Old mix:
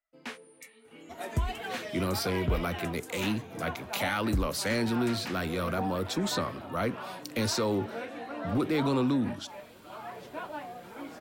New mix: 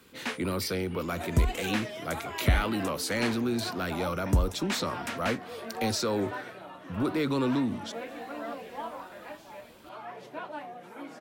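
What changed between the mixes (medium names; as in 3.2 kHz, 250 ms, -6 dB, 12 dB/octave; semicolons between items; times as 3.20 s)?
speech: entry -1.55 s; first sound +6.5 dB; master: add peaking EQ 110 Hz -2.5 dB 1.2 oct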